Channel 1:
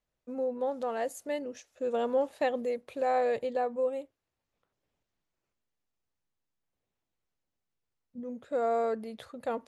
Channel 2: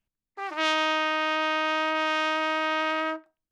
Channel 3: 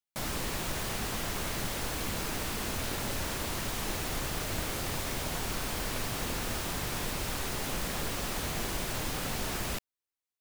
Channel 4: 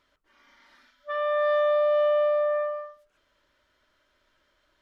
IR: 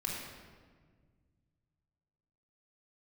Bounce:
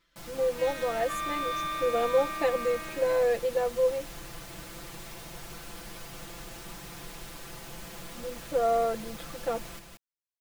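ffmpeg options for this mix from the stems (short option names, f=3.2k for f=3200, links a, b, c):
-filter_complex "[0:a]volume=-1dB[a];[1:a]volume=-17.5dB[b];[2:a]volume=-13dB,asplit=2[c][d];[d]volume=-5dB[e];[3:a]equalizer=f=740:w=0.82:g=-10.5,volume=-1dB[f];[e]aecho=0:1:179:1[g];[a][b][c][f][g]amix=inputs=5:normalize=0,aecho=1:1:5.9:0.95"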